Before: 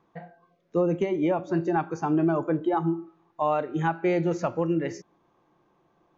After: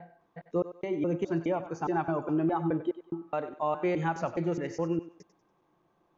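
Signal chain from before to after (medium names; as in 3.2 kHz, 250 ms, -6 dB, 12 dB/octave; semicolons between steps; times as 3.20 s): slices played last to first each 208 ms, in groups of 2; thinning echo 95 ms, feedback 34%, high-pass 420 Hz, level -12 dB; trim -4.5 dB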